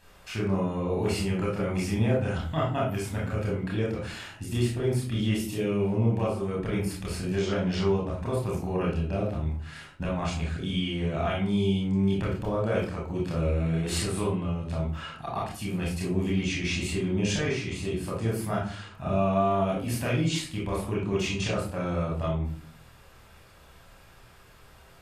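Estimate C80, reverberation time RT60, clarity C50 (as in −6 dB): 9.5 dB, 0.45 s, 3.5 dB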